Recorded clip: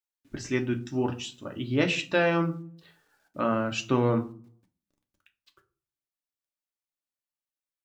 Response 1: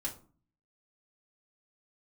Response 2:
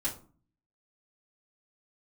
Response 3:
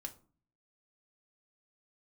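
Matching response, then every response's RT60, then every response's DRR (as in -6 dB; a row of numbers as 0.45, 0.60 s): 3; 0.40, 0.40, 0.40 s; -4.0, -8.5, 3.0 dB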